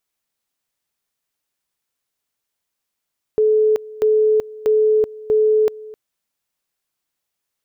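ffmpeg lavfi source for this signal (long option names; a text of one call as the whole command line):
ffmpeg -f lavfi -i "aevalsrc='pow(10,(-11.5-20.5*gte(mod(t,0.64),0.38))/20)*sin(2*PI*431*t)':duration=2.56:sample_rate=44100" out.wav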